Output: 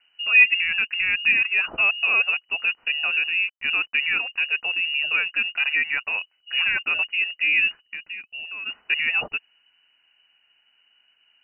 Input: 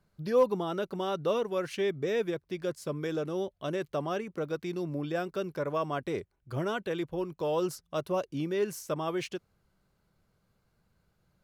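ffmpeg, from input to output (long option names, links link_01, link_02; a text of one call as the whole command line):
ffmpeg -i in.wav -filter_complex "[0:a]asettb=1/sr,asplit=3[link_01][link_02][link_03];[link_01]atrim=end=3.334[link_04];[link_02]atrim=start=3.33:end=3.96,asetpts=PTS-STARTPTS,afade=type=in:duration=0.004:curve=qsin,afade=type=out:start_time=0.626:duration=0.004:curve=qsin,acrusher=bits=8:mix=0:aa=0.5[link_05];[link_03]atrim=start=3.956[link_06];[link_04][link_05]acrossfade=duration=0.004:curve1=hsin:curve2=qsin[link_07];[link_07][link_06]acrossfade=duration=0.004:curve1=qsin:curve2=hsin,asettb=1/sr,asplit=3[link_08][link_09][link_10];[link_08]atrim=end=5.754[link_11];[link_09]atrim=start=5.75:end=6.18,asetpts=PTS-STARTPTS,afade=type=in:duration=0.004:curve=qsin,afade=type=out:start_time=0.426:duration=0.004:curve=qsin,highpass=frequency=360:poles=1[link_12];[link_10]atrim=start=6.176[link_13];[link_11][link_12]acrossfade=duration=0.004:curve1=hsin:curve2=qsin[link_14];[link_14][link_13]acrossfade=duration=0.004:curve1=qsin:curve2=hsin,asplit=3[link_15][link_16][link_17];[link_15]afade=type=out:start_time=7.8:duration=0.02[link_18];[link_16]acompressor=threshold=-41dB:ratio=16,afade=type=in:start_time=7.8:duration=0.02,afade=type=out:start_time=8.65:duration=0.02[link_19];[link_17]afade=type=in:start_time=8.65:duration=0.02[link_20];[link_18][link_19][link_20]amix=inputs=3:normalize=0,lowpass=frequency=2600:width_type=q:width=0.5098,lowpass=frequency=2600:width_type=q:width=0.6013,lowpass=frequency=2600:width_type=q:width=0.9,lowpass=frequency=2600:width_type=q:width=2.563,afreqshift=-3000,volume=9dB" out.wav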